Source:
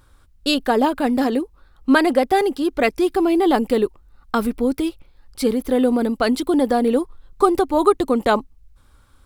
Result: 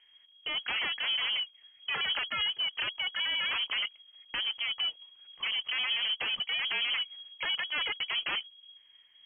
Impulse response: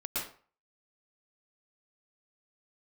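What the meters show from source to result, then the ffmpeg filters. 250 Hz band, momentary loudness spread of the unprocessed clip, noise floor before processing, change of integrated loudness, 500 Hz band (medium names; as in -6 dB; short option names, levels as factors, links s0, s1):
under -40 dB, 8 LU, -54 dBFS, -11.0 dB, -33.5 dB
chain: -af "aeval=exprs='0.126*(abs(mod(val(0)/0.126+3,4)-2)-1)':c=same,acrusher=bits=4:mode=log:mix=0:aa=0.000001,lowpass=f=2800:t=q:w=0.5098,lowpass=f=2800:t=q:w=0.6013,lowpass=f=2800:t=q:w=0.9,lowpass=f=2800:t=q:w=2.563,afreqshift=-3300,volume=0.376"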